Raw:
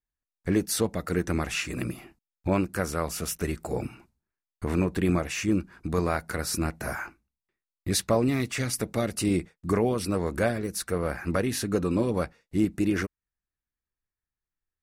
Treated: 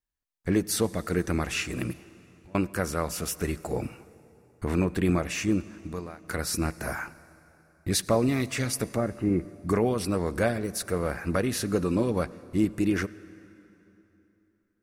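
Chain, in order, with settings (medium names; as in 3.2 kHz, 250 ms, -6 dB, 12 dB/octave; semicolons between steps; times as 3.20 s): 1.93–2.55 s: compression 5:1, threshold -56 dBFS, peak gain reduction 31 dB; 5.48–6.24 s: fade out; 8.96–9.67 s: low-pass 1.7 kHz 24 dB/octave; reverberation RT60 3.3 s, pre-delay 68 ms, DRR 18.5 dB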